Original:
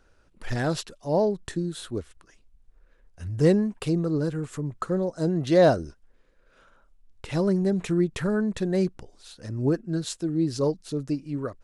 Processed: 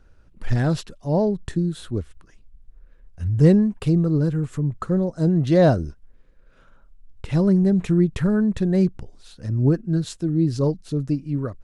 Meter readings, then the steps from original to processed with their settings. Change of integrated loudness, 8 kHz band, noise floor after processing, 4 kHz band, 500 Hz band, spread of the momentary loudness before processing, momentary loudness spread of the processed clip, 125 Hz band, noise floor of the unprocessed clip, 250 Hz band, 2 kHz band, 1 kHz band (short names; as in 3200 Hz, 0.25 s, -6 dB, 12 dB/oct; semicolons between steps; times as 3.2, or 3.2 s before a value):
+5.0 dB, n/a, -53 dBFS, -1.5 dB, +1.0 dB, 12 LU, 11 LU, +8.5 dB, -62 dBFS, +6.0 dB, 0.0 dB, 0.0 dB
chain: tone controls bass +10 dB, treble -3 dB